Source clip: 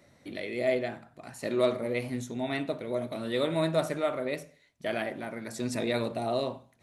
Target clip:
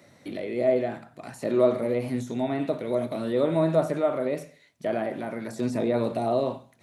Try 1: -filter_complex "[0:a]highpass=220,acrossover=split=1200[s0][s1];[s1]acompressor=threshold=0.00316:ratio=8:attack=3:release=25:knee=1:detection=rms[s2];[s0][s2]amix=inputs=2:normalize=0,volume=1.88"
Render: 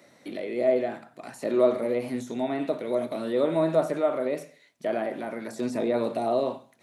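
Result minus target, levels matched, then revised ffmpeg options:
125 Hz band -6.5 dB
-filter_complex "[0:a]highpass=95,acrossover=split=1200[s0][s1];[s1]acompressor=threshold=0.00316:ratio=8:attack=3:release=25:knee=1:detection=rms[s2];[s0][s2]amix=inputs=2:normalize=0,volume=1.88"

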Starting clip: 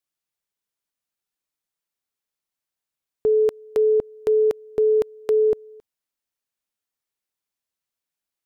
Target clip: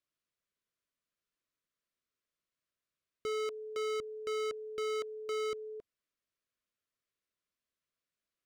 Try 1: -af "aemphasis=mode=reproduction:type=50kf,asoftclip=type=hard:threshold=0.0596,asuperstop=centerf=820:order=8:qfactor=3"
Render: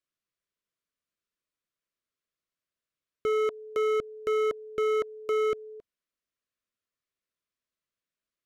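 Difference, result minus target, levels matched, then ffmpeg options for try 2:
hard clipper: distortion -4 dB
-af "aemphasis=mode=reproduction:type=50kf,asoftclip=type=hard:threshold=0.02,asuperstop=centerf=820:order=8:qfactor=3"

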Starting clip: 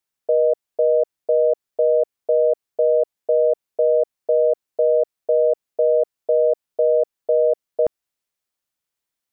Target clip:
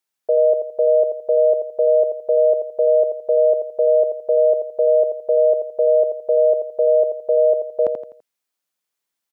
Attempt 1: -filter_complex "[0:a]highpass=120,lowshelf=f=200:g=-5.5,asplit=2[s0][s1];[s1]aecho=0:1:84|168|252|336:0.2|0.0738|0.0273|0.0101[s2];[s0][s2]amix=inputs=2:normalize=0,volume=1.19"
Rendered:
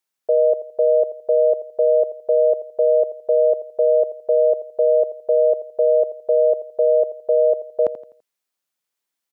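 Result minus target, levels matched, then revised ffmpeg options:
echo-to-direct -7 dB
-filter_complex "[0:a]highpass=120,lowshelf=f=200:g=-5.5,asplit=2[s0][s1];[s1]aecho=0:1:84|168|252|336:0.447|0.165|0.0612|0.0226[s2];[s0][s2]amix=inputs=2:normalize=0,volume=1.19"

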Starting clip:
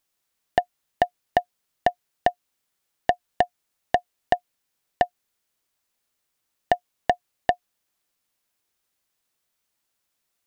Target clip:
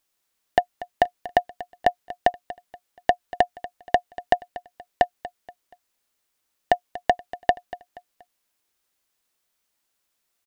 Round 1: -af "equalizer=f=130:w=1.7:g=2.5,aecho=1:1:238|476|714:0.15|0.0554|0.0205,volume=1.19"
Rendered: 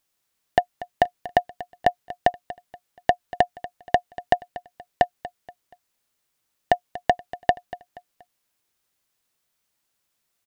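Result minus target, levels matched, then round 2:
125 Hz band +5.0 dB
-af "equalizer=f=130:w=1.7:g=-6,aecho=1:1:238|476|714:0.15|0.0554|0.0205,volume=1.19"

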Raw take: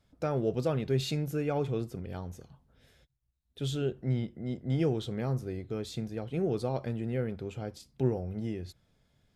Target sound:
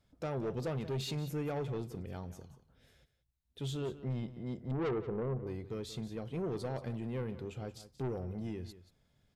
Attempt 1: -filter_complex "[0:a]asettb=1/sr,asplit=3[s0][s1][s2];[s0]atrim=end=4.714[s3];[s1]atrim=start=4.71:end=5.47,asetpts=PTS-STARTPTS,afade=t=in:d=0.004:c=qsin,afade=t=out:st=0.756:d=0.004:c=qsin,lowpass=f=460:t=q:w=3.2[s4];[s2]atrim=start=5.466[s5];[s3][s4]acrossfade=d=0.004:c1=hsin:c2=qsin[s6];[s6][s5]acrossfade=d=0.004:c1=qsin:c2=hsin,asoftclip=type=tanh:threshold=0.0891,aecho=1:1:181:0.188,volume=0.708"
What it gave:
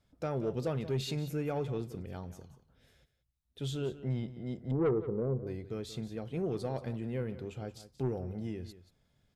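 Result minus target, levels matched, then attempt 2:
saturation: distortion -6 dB
-filter_complex "[0:a]asettb=1/sr,asplit=3[s0][s1][s2];[s0]atrim=end=4.714[s3];[s1]atrim=start=4.71:end=5.47,asetpts=PTS-STARTPTS,afade=t=in:d=0.004:c=qsin,afade=t=out:st=0.756:d=0.004:c=qsin,lowpass=f=460:t=q:w=3.2[s4];[s2]atrim=start=5.466[s5];[s3][s4]acrossfade=d=0.004:c1=hsin:c2=qsin[s6];[s6][s5]acrossfade=d=0.004:c1=qsin:c2=hsin,asoftclip=type=tanh:threshold=0.0376,aecho=1:1:181:0.188,volume=0.708"

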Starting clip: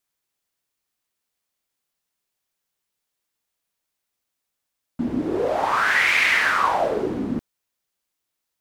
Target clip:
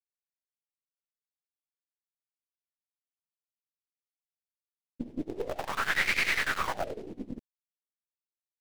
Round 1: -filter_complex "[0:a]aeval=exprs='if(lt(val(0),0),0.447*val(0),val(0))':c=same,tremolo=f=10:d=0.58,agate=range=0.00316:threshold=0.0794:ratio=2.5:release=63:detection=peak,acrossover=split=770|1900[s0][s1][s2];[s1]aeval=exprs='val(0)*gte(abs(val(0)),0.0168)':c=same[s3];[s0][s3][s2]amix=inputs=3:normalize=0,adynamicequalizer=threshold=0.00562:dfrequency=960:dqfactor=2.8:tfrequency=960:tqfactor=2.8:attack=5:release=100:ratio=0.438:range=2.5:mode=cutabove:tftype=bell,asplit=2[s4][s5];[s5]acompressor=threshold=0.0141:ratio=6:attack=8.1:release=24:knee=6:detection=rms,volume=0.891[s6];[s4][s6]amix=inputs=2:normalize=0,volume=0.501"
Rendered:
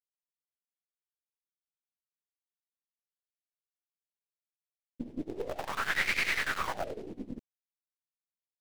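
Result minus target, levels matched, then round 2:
compression: peak gain reduction +9.5 dB
-filter_complex "[0:a]aeval=exprs='if(lt(val(0),0),0.447*val(0),val(0))':c=same,tremolo=f=10:d=0.58,agate=range=0.00316:threshold=0.0794:ratio=2.5:release=63:detection=peak,acrossover=split=770|1900[s0][s1][s2];[s1]aeval=exprs='val(0)*gte(abs(val(0)),0.0168)':c=same[s3];[s0][s3][s2]amix=inputs=3:normalize=0,adynamicequalizer=threshold=0.00562:dfrequency=960:dqfactor=2.8:tfrequency=960:tqfactor=2.8:attack=5:release=100:ratio=0.438:range=2.5:mode=cutabove:tftype=bell,asplit=2[s4][s5];[s5]acompressor=threshold=0.0531:ratio=6:attack=8.1:release=24:knee=6:detection=rms,volume=0.891[s6];[s4][s6]amix=inputs=2:normalize=0,volume=0.501"

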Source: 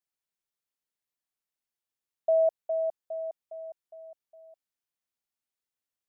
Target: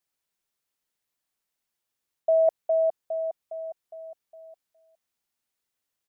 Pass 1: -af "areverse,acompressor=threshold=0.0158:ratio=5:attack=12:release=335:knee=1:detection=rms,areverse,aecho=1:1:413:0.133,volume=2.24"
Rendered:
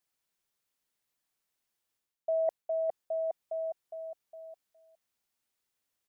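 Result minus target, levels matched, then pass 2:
compression: peak gain reduction +9 dB
-af "areverse,acompressor=threshold=0.0562:ratio=5:attack=12:release=335:knee=1:detection=rms,areverse,aecho=1:1:413:0.133,volume=2.24"

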